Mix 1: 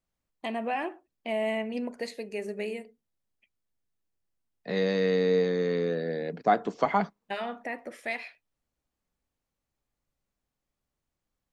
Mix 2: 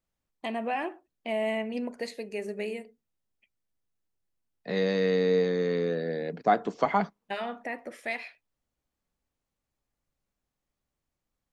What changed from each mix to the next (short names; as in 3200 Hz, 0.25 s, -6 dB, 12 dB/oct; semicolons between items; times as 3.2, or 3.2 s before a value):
none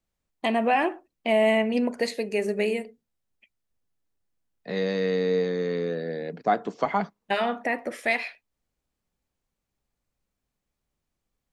first voice +8.5 dB